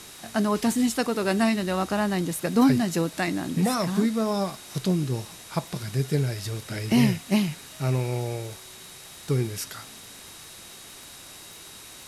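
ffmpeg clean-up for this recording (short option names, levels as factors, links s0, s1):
-af "adeclick=t=4,bandreject=f=3800:w=30,afwtdn=0.0071"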